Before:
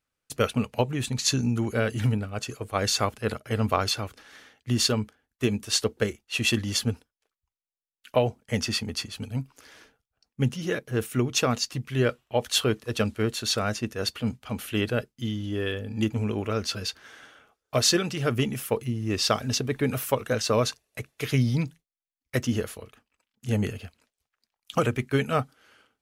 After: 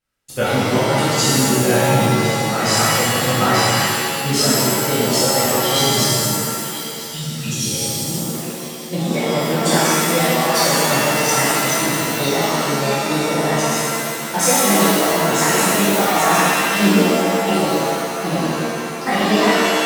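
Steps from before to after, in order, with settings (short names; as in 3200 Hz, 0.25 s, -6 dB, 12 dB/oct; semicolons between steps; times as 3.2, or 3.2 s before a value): speed glide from 105% -> 157%; spectral delete 5.84–7.71, 250–2400 Hz; on a send: narrowing echo 0.992 s, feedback 61%, band-pass 1900 Hz, level -10 dB; on the sum: shimmer reverb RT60 2 s, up +7 st, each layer -2 dB, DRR -11 dB; gain -3 dB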